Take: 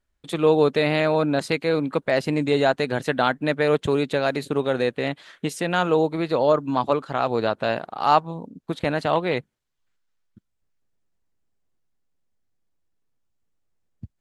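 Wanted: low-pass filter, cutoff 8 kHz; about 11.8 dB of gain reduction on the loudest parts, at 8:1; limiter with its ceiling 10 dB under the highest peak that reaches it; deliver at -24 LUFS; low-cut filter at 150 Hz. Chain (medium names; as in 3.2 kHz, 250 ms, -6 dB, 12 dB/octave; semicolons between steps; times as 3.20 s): high-pass 150 Hz; low-pass 8 kHz; compression 8:1, threshold -25 dBFS; trim +10.5 dB; peak limiter -12.5 dBFS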